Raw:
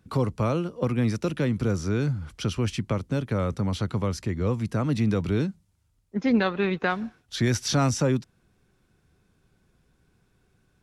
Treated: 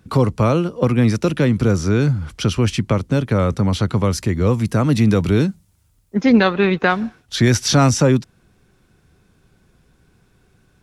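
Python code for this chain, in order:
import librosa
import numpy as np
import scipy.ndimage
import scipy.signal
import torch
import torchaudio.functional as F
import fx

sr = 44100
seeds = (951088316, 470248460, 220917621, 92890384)

y = fx.high_shelf(x, sr, hz=9600.0, db=10.0, at=(4.04, 6.54))
y = y * librosa.db_to_amplitude(9.0)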